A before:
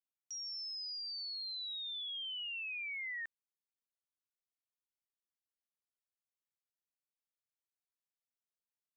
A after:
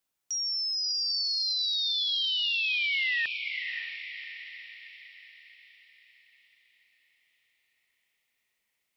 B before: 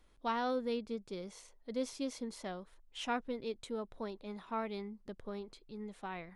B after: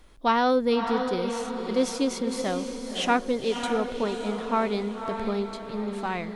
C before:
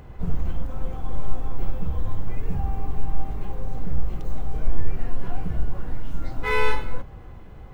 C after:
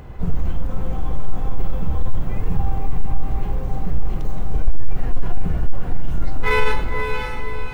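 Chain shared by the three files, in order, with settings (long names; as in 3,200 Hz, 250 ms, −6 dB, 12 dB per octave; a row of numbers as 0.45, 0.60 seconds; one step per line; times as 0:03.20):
feedback delay with all-pass diffusion 566 ms, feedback 49%, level −6.5 dB
soft clipping −9.5 dBFS
loudness normalisation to −27 LKFS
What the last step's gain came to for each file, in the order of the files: +12.5, +12.5, +5.0 decibels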